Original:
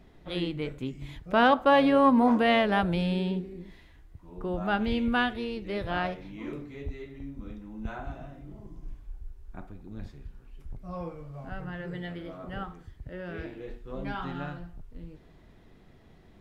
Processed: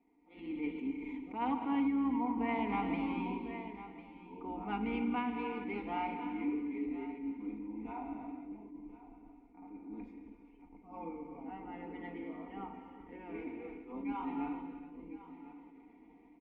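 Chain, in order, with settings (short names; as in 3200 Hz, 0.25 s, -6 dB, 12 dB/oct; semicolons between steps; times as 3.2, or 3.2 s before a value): octaver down 2 oct, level 0 dB; dynamic EQ 510 Hz, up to -7 dB, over -38 dBFS, Q 1; vowel filter u; comb 4.2 ms, depth 70%; non-linear reverb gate 0.45 s flat, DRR 6.5 dB; AGC gain up to 11.5 dB; ten-band EQ 125 Hz -9 dB, 250 Hz -3 dB, 500 Hz +8 dB, 2000 Hz +5 dB, 4000 Hz -11 dB; echo 1.05 s -16 dB; compressor 10:1, threshold -25 dBFS, peak gain reduction 12 dB; notches 60/120/180/240 Hz; attack slew limiter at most 120 dB/s; gain -4 dB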